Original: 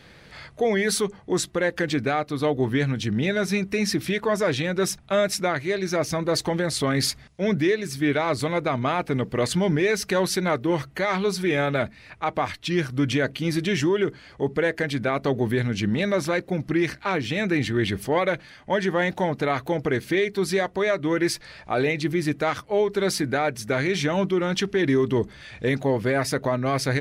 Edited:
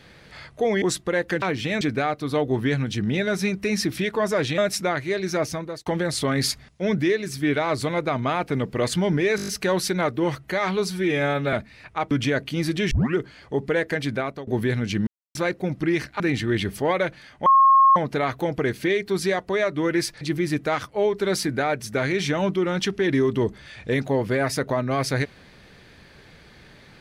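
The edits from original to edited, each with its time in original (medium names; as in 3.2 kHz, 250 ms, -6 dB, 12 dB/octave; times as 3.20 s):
0.82–1.30 s: delete
4.67–5.17 s: delete
6.00–6.45 s: fade out
9.95 s: stutter 0.02 s, 7 plays
11.37–11.79 s: stretch 1.5×
12.37–12.99 s: delete
13.79 s: tape start 0.25 s
15.01–15.35 s: fade out, to -22 dB
15.95–16.23 s: mute
17.08–17.47 s: move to 1.90 s
18.73–19.23 s: bleep 1.08 kHz -11 dBFS
21.48–21.96 s: delete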